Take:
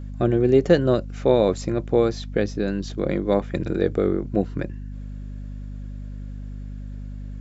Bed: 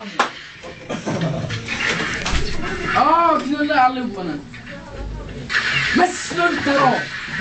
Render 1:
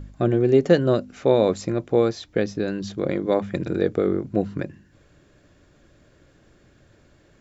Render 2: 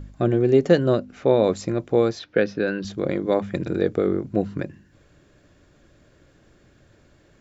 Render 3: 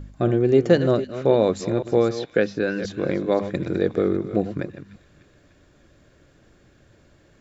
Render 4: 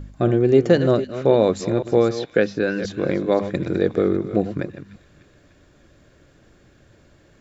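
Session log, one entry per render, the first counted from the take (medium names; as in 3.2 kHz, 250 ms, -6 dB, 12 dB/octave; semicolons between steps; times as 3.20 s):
de-hum 50 Hz, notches 5
0.95–1.44 s: treble shelf 5.4 kHz -10 dB; 2.19–2.85 s: cabinet simulation 130–5200 Hz, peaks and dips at 510 Hz +5 dB, 1.5 kHz +10 dB, 2.6 kHz +5 dB
chunks repeated in reverse 261 ms, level -12 dB; feedback echo behind a high-pass 298 ms, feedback 62%, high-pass 2.2 kHz, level -16 dB
trim +2 dB; peak limiter -3 dBFS, peak gain reduction 2 dB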